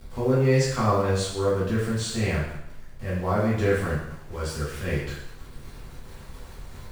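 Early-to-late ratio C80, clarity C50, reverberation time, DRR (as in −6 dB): 5.0 dB, 2.0 dB, 0.80 s, −9.0 dB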